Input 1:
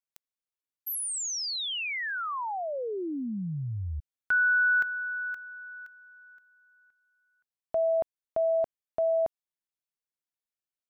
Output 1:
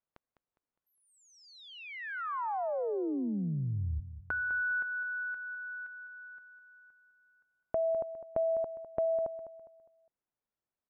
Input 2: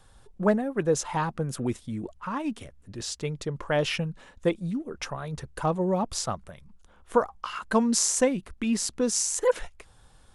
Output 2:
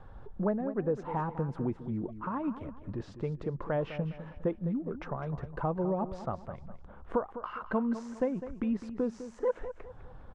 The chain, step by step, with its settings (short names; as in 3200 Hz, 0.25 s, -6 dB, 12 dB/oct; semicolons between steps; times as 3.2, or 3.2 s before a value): compressor 2:1, threshold -46 dBFS; LPF 1200 Hz 12 dB/oct; feedback echo 0.204 s, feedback 36%, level -12 dB; gain +7.5 dB